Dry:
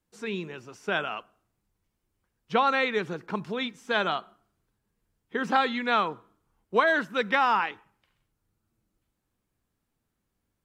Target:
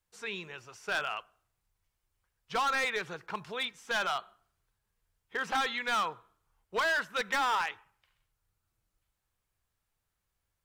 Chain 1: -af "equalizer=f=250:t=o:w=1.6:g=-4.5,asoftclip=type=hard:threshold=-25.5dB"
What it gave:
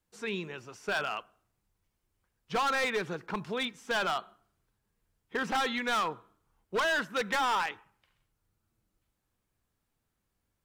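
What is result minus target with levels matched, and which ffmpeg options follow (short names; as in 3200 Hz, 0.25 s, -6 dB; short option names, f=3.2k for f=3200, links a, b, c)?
250 Hz band +7.0 dB
-af "equalizer=f=250:t=o:w=1.6:g=-16.5,asoftclip=type=hard:threshold=-25.5dB"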